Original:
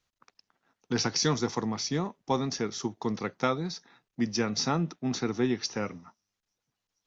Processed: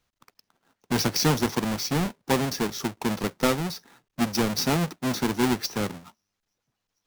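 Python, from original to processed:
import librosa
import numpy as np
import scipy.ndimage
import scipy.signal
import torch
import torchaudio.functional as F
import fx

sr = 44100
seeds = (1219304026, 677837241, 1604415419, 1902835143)

y = fx.halfwave_hold(x, sr)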